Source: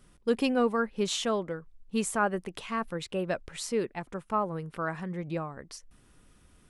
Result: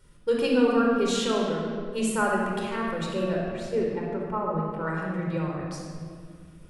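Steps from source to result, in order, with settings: 3.3–4.87 LPF 1400 Hz 6 dB/oct; reverb RT60 2.0 s, pre-delay 27 ms, DRR -1.5 dB; gain -2.5 dB

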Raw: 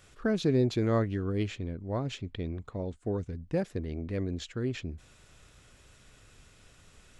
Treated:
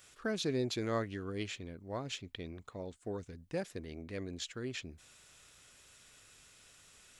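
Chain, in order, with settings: tilt +2.5 dB/oct; gain -4 dB

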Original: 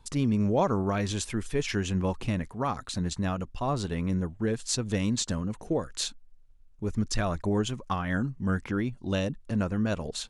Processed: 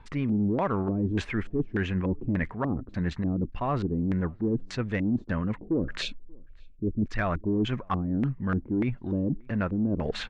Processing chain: LFO low-pass square 1.7 Hz 320–2000 Hz; in parallel at -4 dB: soft clip -19 dBFS, distortion -18 dB; on the sum: spectral gain 6.02–7.07, 660–2200 Hz -19 dB; reverse; compressor 4:1, threshold -31 dBFS, peak gain reduction 13.5 dB; reverse; outdoor echo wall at 100 m, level -29 dB; gain +5 dB

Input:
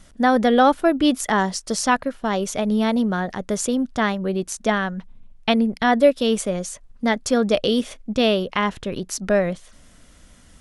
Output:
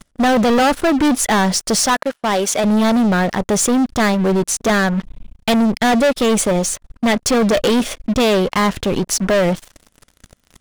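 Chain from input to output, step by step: 1.86–2.64 HPF 590 Hz 6 dB/oct; sample leveller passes 5; gain -6 dB

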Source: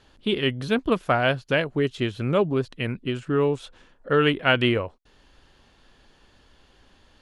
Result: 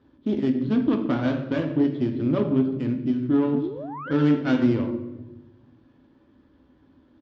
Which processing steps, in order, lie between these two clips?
median filter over 15 samples; doubler 12 ms -10.5 dB; on a send at -3.5 dB: reverb RT60 0.95 s, pre-delay 4 ms; on the sum: painted sound rise, 3.53–4.12, 220–1700 Hz -30 dBFS; added harmonics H 4 -16 dB, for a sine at -7.5 dBFS; tilt shelf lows +9 dB, about 730 Hz; in parallel at -2.5 dB: compressor, threshold -24 dBFS, peak gain reduction 15.5 dB; on the sum: speaker cabinet 150–5400 Hz, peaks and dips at 180 Hz -10 dB, 300 Hz +6 dB, 460 Hz -10 dB, 730 Hz -9 dB, 3300 Hz +9 dB; gain -6 dB

